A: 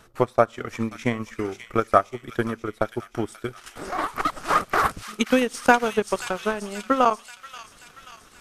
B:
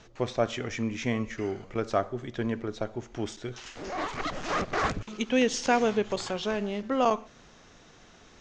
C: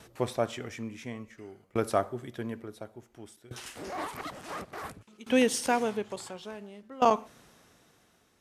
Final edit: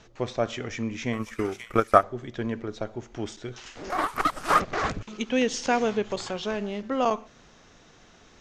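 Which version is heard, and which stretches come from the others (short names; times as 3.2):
B
1.13–2.03 from A
3.9–4.6 from A
not used: C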